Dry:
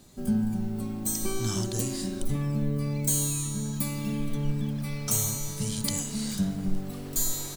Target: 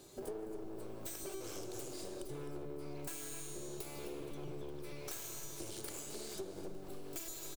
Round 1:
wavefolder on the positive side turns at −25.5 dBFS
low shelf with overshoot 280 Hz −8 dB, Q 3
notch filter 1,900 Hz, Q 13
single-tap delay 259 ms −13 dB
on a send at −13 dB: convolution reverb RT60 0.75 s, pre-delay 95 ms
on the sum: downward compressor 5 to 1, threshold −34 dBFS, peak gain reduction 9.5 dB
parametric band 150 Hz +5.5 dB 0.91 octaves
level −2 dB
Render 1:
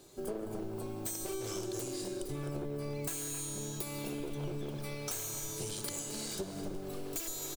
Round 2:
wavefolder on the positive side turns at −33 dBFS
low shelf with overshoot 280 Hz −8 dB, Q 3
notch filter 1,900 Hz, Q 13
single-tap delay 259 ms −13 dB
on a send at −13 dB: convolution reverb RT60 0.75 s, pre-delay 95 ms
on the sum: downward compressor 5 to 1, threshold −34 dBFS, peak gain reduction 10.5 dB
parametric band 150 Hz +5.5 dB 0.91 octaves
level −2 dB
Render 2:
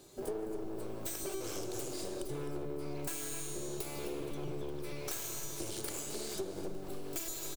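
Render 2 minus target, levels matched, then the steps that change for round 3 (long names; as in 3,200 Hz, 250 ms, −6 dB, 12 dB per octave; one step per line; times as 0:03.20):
downward compressor: peak gain reduction −5 dB
change: downward compressor 5 to 1, threshold −40.5 dBFS, peak gain reduction 15.5 dB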